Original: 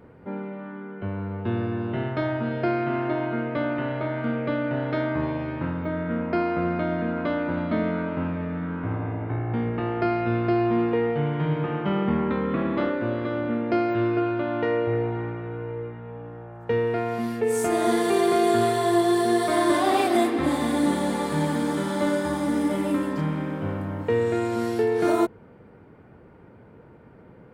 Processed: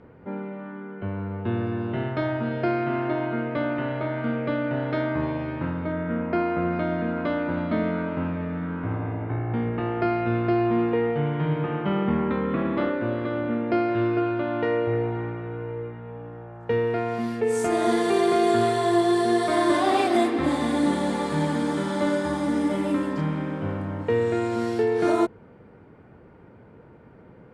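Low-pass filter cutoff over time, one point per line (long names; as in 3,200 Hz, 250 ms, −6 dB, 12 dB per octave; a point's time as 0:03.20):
4,500 Hz
from 0:01.67 9,000 Hz
from 0:05.92 3,600 Hz
from 0:06.73 9,200 Hz
from 0:09.25 4,700 Hz
from 0:13.92 8,300 Hz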